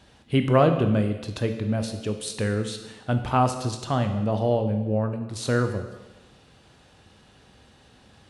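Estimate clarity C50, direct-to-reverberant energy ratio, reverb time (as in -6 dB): 8.0 dB, 6.0 dB, 1.1 s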